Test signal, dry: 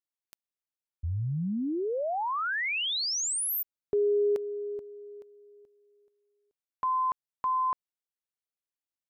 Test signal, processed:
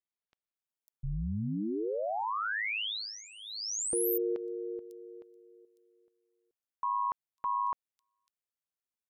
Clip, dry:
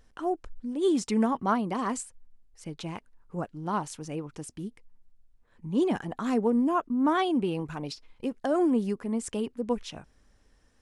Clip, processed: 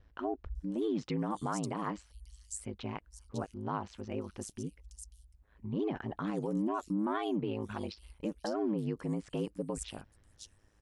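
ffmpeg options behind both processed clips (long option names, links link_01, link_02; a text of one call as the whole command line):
ffmpeg -i in.wav -filter_complex "[0:a]aeval=exprs='val(0)*sin(2*PI*53*n/s)':channel_layout=same,alimiter=level_in=1dB:limit=-24dB:level=0:latency=1:release=91,volume=-1dB,acrossover=split=4500[link_01][link_02];[link_02]adelay=550[link_03];[link_01][link_03]amix=inputs=2:normalize=0" out.wav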